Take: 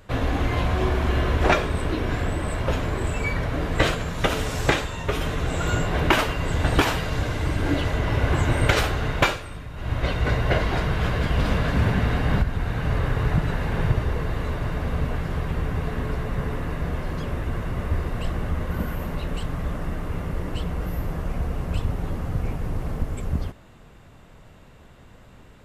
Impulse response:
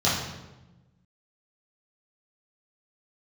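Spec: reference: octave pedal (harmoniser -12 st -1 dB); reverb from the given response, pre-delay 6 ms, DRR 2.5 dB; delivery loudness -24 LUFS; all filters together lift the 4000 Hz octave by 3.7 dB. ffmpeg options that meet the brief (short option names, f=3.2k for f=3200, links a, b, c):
-filter_complex "[0:a]equalizer=f=4k:t=o:g=5,asplit=2[a][b];[1:a]atrim=start_sample=2205,adelay=6[c];[b][c]afir=irnorm=-1:irlink=0,volume=-18dB[d];[a][d]amix=inputs=2:normalize=0,asplit=2[e][f];[f]asetrate=22050,aresample=44100,atempo=2,volume=-1dB[g];[e][g]amix=inputs=2:normalize=0,volume=-4.5dB"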